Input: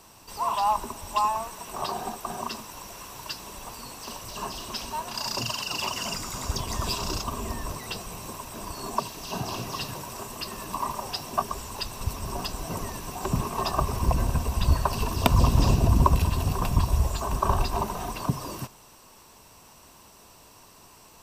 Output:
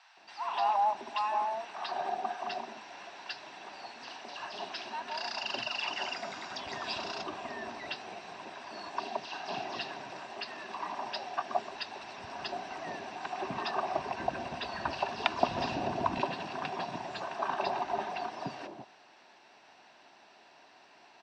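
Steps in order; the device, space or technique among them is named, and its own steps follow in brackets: phone earpiece (cabinet simulation 420–4000 Hz, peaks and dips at 480 Hz -9 dB, 750 Hz +7 dB, 1.1 kHz -9 dB, 1.7 kHz +5 dB, 3.1 kHz -4 dB); 16.01–17.68 s: high-pass 120 Hz 24 dB/octave; bands offset in time highs, lows 170 ms, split 890 Hz

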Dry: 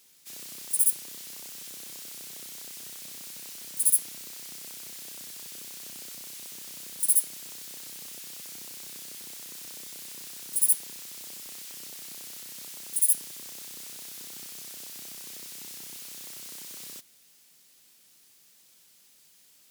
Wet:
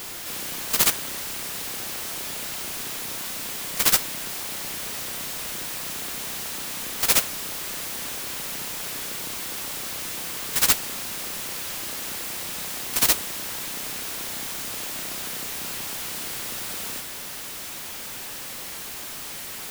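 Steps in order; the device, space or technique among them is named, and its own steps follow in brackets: early CD player with a faulty converter (jump at every zero crossing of -33 dBFS; sampling jitter); trim +4.5 dB

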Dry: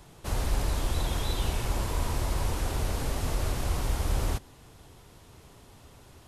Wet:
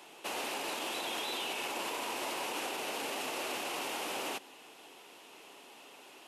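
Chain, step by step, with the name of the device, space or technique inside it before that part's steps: laptop speaker (high-pass 280 Hz 24 dB/octave; peaking EQ 820 Hz +4 dB 0.46 oct; peaking EQ 2.7 kHz +11 dB 0.56 oct; peak limiter -28 dBFS, peak gain reduction 7 dB)

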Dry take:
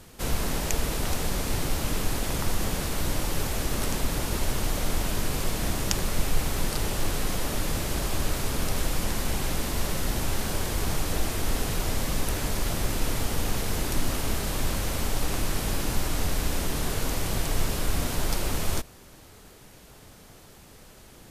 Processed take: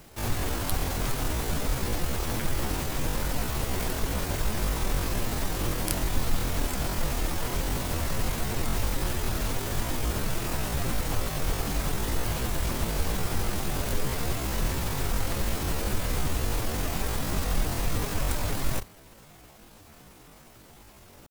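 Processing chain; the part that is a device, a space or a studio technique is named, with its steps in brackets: chipmunk voice (pitch shift +9 st); trim -1 dB

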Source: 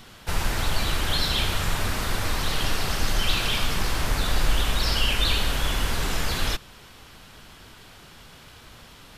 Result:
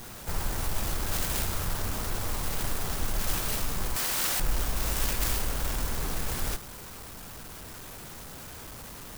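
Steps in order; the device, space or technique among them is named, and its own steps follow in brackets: 3.96–4.40 s: tilt EQ +4.5 dB/octave; early CD player with a faulty converter (jump at every zero crossing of -32.5 dBFS; sampling jitter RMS 0.11 ms); trim -6.5 dB

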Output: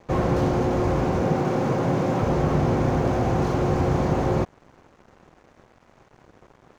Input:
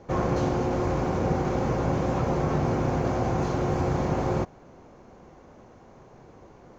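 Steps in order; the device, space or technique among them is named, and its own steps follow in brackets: 1.21–2.23 s: high-pass 110 Hz 24 dB/octave; early transistor amplifier (crossover distortion -50 dBFS; slew-rate limiter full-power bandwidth 33 Hz); trim +4.5 dB

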